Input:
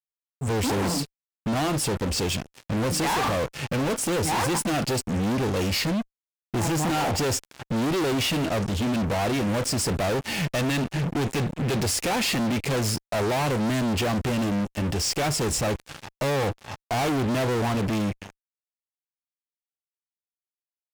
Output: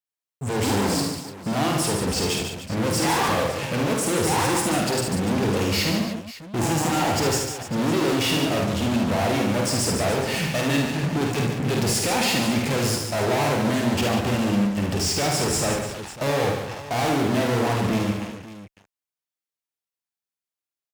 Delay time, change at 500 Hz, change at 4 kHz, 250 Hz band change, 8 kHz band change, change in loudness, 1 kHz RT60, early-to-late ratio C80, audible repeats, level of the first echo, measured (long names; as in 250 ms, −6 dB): 50 ms, +3.0 dB, +3.0 dB, +2.5 dB, +3.0 dB, +2.5 dB, no reverb audible, no reverb audible, 5, −4.5 dB